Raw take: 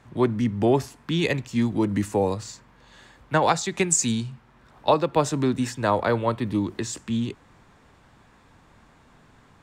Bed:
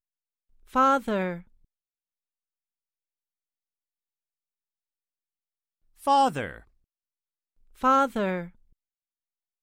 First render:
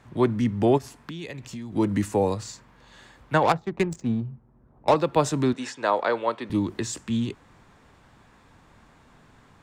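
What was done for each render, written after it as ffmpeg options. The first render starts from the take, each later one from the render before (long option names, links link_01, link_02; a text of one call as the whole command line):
ffmpeg -i in.wav -filter_complex "[0:a]asplit=3[link_01][link_02][link_03];[link_01]afade=type=out:start_time=0.77:duration=0.02[link_04];[link_02]acompressor=threshold=-32dB:ratio=12:attack=3.2:release=140:knee=1:detection=peak,afade=type=in:start_time=0.77:duration=0.02,afade=type=out:start_time=1.75:duration=0.02[link_05];[link_03]afade=type=in:start_time=1.75:duration=0.02[link_06];[link_04][link_05][link_06]amix=inputs=3:normalize=0,asettb=1/sr,asplit=3[link_07][link_08][link_09];[link_07]atrim=end=3.434[link_10];[link_08]atrim=start=3.43:end=4.96,asetpts=PTS-STARTPTS,afade=type=in:duration=0.004:curve=qsin,afade=type=out:start_time=1.526:duration=0.004:curve=qsin,adynamicsmooth=sensitivity=1:basefreq=540[link_11];[link_09]atrim=start=4.956[link_12];[link_10][link_11]acrossfade=duration=0.004:curve1=hsin:curve2=qsin[link_13];[link_13][link_12]acrossfade=duration=0.004:curve1=qsin:curve2=hsin,asettb=1/sr,asplit=3[link_14][link_15][link_16];[link_14]atrim=end=5.534[link_17];[link_15]atrim=start=5.53:end=6.5,asetpts=PTS-STARTPTS,afade=type=in:duration=0.004:curve=qsin,afade=type=out:start_time=0.966:duration=0.004:curve=qsin,highpass=390,lowpass=6400[link_18];[link_16]atrim=start=6.496[link_19];[link_17][link_18]acrossfade=duration=0.004:curve1=hsin:curve2=qsin[link_20];[link_20][link_19]acrossfade=duration=0.004:curve1=qsin:curve2=hsin" out.wav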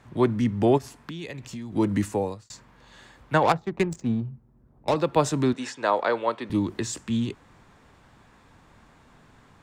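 ffmpeg -i in.wav -filter_complex "[0:a]asettb=1/sr,asplit=3[link_01][link_02][link_03];[link_01]atrim=end=4.294[link_04];[link_02]atrim=start=4.29:end=4.97,asetpts=PTS-STARTPTS,afade=type=in:duration=0.004:curve=qsin,afade=type=out:start_time=0.676:duration=0.004:curve=qsin,equalizer=frequency=970:width_type=o:width=2.4:gain=-6[link_05];[link_03]atrim=start=4.966[link_06];[link_04][link_05]acrossfade=duration=0.004:curve1=hsin:curve2=qsin[link_07];[link_07][link_06]acrossfade=duration=0.004:curve1=qsin:curve2=hsin,asplit=2[link_08][link_09];[link_08]atrim=end=2.5,asetpts=PTS-STARTPTS,afade=type=out:start_time=2.03:duration=0.47[link_10];[link_09]atrim=start=2.5,asetpts=PTS-STARTPTS,afade=type=in:duration=0.004:curve=hsin[link_11];[link_10][link_11]concat=n=2:v=0:a=1" out.wav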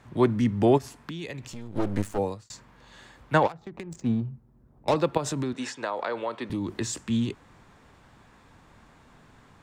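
ffmpeg -i in.wav -filter_complex "[0:a]asplit=3[link_01][link_02][link_03];[link_01]afade=type=out:start_time=1.52:duration=0.02[link_04];[link_02]aeval=exprs='max(val(0),0)':channel_layout=same,afade=type=in:start_time=1.52:duration=0.02,afade=type=out:start_time=2.17:duration=0.02[link_05];[link_03]afade=type=in:start_time=2.17:duration=0.02[link_06];[link_04][link_05][link_06]amix=inputs=3:normalize=0,asplit=3[link_07][link_08][link_09];[link_07]afade=type=out:start_time=3.46:duration=0.02[link_10];[link_08]acompressor=threshold=-34dB:ratio=16:attack=3.2:release=140:knee=1:detection=peak,afade=type=in:start_time=3.46:duration=0.02,afade=type=out:start_time=3.98:duration=0.02[link_11];[link_09]afade=type=in:start_time=3.98:duration=0.02[link_12];[link_10][link_11][link_12]amix=inputs=3:normalize=0,asettb=1/sr,asplit=3[link_13][link_14][link_15];[link_13]atrim=end=5.174[link_16];[link_14]atrim=start=5.17:end=6.81,asetpts=PTS-STARTPTS,afade=type=in:duration=0.004:curve=qsin,afade=type=out:start_time=1.636:duration=0.004:curve=qsin,acompressor=threshold=-25dB:ratio=6:attack=3.2:release=140:knee=1:detection=peak[link_17];[link_15]atrim=start=6.806[link_18];[link_16][link_17]acrossfade=duration=0.004:curve1=hsin:curve2=qsin[link_19];[link_19][link_18]acrossfade=duration=0.004:curve1=qsin:curve2=hsin" out.wav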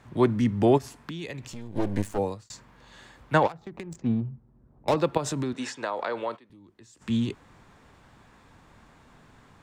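ffmpeg -i in.wav -filter_complex "[0:a]asettb=1/sr,asplit=3[link_01][link_02][link_03];[link_01]atrim=end=1.624[link_04];[link_02]atrim=start=1.62:end=2.08,asetpts=PTS-STARTPTS,afade=type=in:duration=0.004:curve=qsin,afade=type=out:start_time=0.456:duration=0.004:curve=qsin,asuperstop=centerf=1300:order=4:qfactor=6.1[link_05];[link_03]atrim=start=2.076[link_06];[link_04][link_05]acrossfade=duration=0.004:curve1=hsin:curve2=qsin[link_07];[link_07][link_06]acrossfade=duration=0.004:curve1=qsin:curve2=hsin,asplit=3[link_08][link_09][link_10];[link_08]afade=type=out:start_time=3.96:duration=0.02[link_11];[link_09]adynamicsmooth=sensitivity=3:basefreq=3200,afade=type=in:start_time=3.96:duration=0.02,afade=type=out:start_time=4.96:duration=0.02[link_12];[link_10]afade=type=in:start_time=4.96:duration=0.02[link_13];[link_11][link_12][link_13]amix=inputs=3:normalize=0,asplit=3[link_14][link_15][link_16];[link_14]atrim=end=6.48,asetpts=PTS-STARTPTS,afade=type=out:start_time=6.36:duration=0.12:curve=exp:silence=0.0749894[link_17];[link_15]atrim=start=6.48:end=6.9,asetpts=PTS-STARTPTS,volume=-22.5dB[link_18];[link_16]atrim=start=6.9,asetpts=PTS-STARTPTS,afade=type=in:duration=0.12:curve=exp:silence=0.0749894[link_19];[link_17][link_18][link_19]concat=n=3:v=0:a=1" out.wav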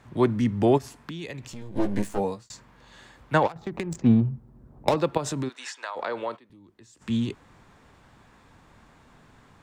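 ffmpeg -i in.wav -filter_complex "[0:a]asettb=1/sr,asplit=3[link_01][link_02][link_03];[link_01]atrim=end=1.604[link_04];[link_02]atrim=start=1.6:end=2.47,asetpts=PTS-STARTPTS,afade=type=in:duration=0.004:curve=qsin,afade=type=out:start_time=0.866:duration=0.004:curve=qsin,asplit=2[link_05][link_06];[link_06]adelay=15,volume=-5dB[link_07];[link_05][link_07]amix=inputs=2:normalize=0,atrim=end_sample=38367[link_08];[link_03]atrim=start=2.466[link_09];[link_04][link_08]acrossfade=duration=0.004:curve1=hsin:curve2=qsin[link_10];[link_10][link_09]acrossfade=duration=0.004:curve1=qsin:curve2=hsin,asplit=3[link_11][link_12][link_13];[link_11]afade=type=out:start_time=5.48:duration=0.02[link_14];[link_12]highpass=970,afade=type=in:start_time=5.48:duration=0.02,afade=type=out:start_time=5.95:duration=0.02[link_15];[link_13]afade=type=in:start_time=5.95:duration=0.02[link_16];[link_14][link_15][link_16]amix=inputs=3:normalize=0,asplit=3[link_17][link_18][link_19];[link_17]atrim=end=3.562[link_20];[link_18]atrim=start=3.558:end=4.892,asetpts=PTS-STARTPTS,volume=7.5dB[link_21];[link_19]atrim=start=4.888[link_22];[link_20][link_21]acrossfade=duration=0.004:curve1=hsin:curve2=hsin[link_23];[link_23][link_22]acrossfade=duration=0.004:curve1=hsin:curve2=hsin" out.wav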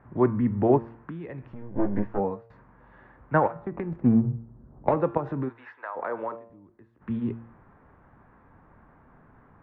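ffmpeg -i in.wav -af "lowpass=frequency=1700:width=0.5412,lowpass=frequency=1700:width=1.3066,bandreject=frequency=115:width_type=h:width=4,bandreject=frequency=230:width_type=h:width=4,bandreject=frequency=345:width_type=h:width=4,bandreject=frequency=460:width_type=h:width=4,bandreject=frequency=575:width_type=h:width=4,bandreject=frequency=690:width_type=h:width=4,bandreject=frequency=805:width_type=h:width=4,bandreject=frequency=920:width_type=h:width=4,bandreject=frequency=1035:width_type=h:width=4,bandreject=frequency=1150:width_type=h:width=4,bandreject=frequency=1265:width_type=h:width=4,bandreject=frequency=1380:width_type=h:width=4,bandreject=frequency=1495:width_type=h:width=4,bandreject=frequency=1610:width_type=h:width=4,bandreject=frequency=1725:width_type=h:width=4,bandreject=frequency=1840:width_type=h:width=4,bandreject=frequency=1955:width_type=h:width=4,bandreject=frequency=2070:width_type=h:width=4,bandreject=frequency=2185:width_type=h:width=4,bandreject=frequency=2300:width_type=h:width=4,bandreject=frequency=2415:width_type=h:width=4,bandreject=frequency=2530:width_type=h:width=4,bandreject=frequency=2645:width_type=h:width=4,bandreject=frequency=2760:width_type=h:width=4,bandreject=frequency=2875:width_type=h:width=4,bandreject=frequency=2990:width_type=h:width=4,bandreject=frequency=3105:width_type=h:width=4,bandreject=frequency=3220:width_type=h:width=4,bandreject=frequency=3335:width_type=h:width=4,bandreject=frequency=3450:width_type=h:width=4,bandreject=frequency=3565:width_type=h:width=4,bandreject=frequency=3680:width_type=h:width=4,bandreject=frequency=3795:width_type=h:width=4,bandreject=frequency=3910:width_type=h:width=4,bandreject=frequency=4025:width_type=h:width=4,bandreject=frequency=4140:width_type=h:width=4,bandreject=frequency=4255:width_type=h:width=4,bandreject=frequency=4370:width_type=h:width=4,bandreject=frequency=4485:width_type=h:width=4,bandreject=frequency=4600:width_type=h:width=4" out.wav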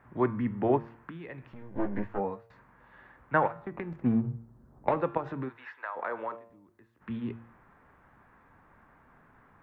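ffmpeg -i in.wav -af "tiltshelf=frequency=1400:gain=-6.5,bandreject=frequency=50:width_type=h:width=6,bandreject=frequency=100:width_type=h:width=6,bandreject=frequency=150:width_type=h:width=6" out.wav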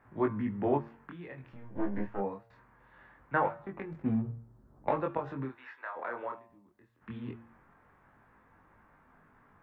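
ffmpeg -i in.wav -af "flanger=delay=19:depth=6:speed=0.23" out.wav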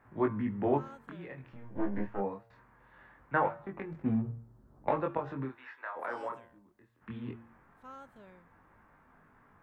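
ffmpeg -i in.wav -i bed.wav -filter_complex "[1:a]volume=-28.5dB[link_01];[0:a][link_01]amix=inputs=2:normalize=0" out.wav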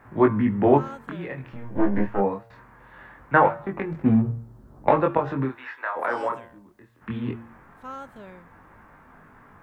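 ffmpeg -i in.wav -af "volume=11.5dB" out.wav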